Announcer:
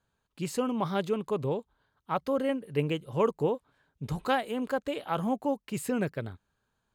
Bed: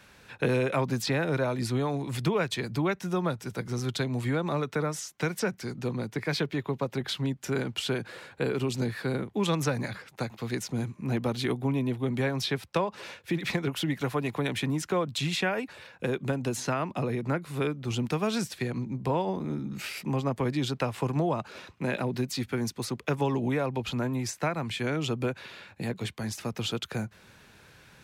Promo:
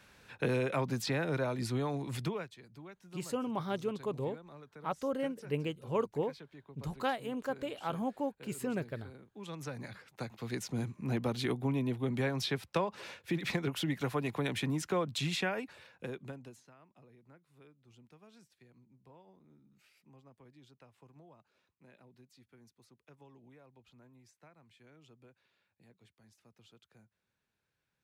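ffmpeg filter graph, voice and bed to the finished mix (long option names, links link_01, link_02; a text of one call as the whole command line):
ffmpeg -i stem1.wav -i stem2.wav -filter_complex "[0:a]adelay=2750,volume=-6dB[link_01];[1:a]volume=13dB,afade=type=out:start_time=2.15:duration=0.37:silence=0.133352,afade=type=in:start_time=9.31:duration=1.49:silence=0.11885,afade=type=out:start_time=15.29:duration=1.34:silence=0.0473151[link_02];[link_01][link_02]amix=inputs=2:normalize=0" out.wav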